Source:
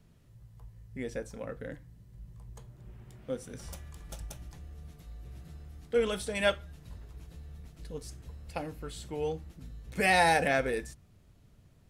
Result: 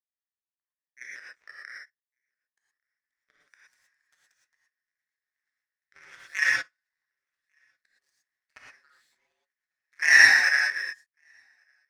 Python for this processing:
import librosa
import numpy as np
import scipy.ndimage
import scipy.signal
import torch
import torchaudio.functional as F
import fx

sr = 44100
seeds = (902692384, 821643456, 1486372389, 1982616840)

p1 = scipy.signal.sosfilt(scipy.signal.butter(2, 6200.0, 'lowpass', fs=sr, output='sos'), x)
p2 = fx.peak_eq(p1, sr, hz=3000.0, db=-11.5, octaves=0.43)
p3 = fx.over_compress(p2, sr, threshold_db=-34.0, ratio=-0.5)
p4 = p2 + (p3 * 10.0 ** (-0.5 / 20.0))
p5 = fx.highpass_res(p4, sr, hz=1800.0, q=9.3)
p6 = fx.echo_feedback(p5, sr, ms=1148, feedback_pct=48, wet_db=-21.5)
p7 = fx.power_curve(p6, sr, exponent=2.0)
p8 = p7 * np.sin(2.0 * np.pi * 74.0 * np.arange(len(p7)) / sr)
p9 = fx.rev_gated(p8, sr, seeds[0], gate_ms=140, shape='rising', drr_db=-4.5)
y = p9 * 10.0 ** (1.5 / 20.0)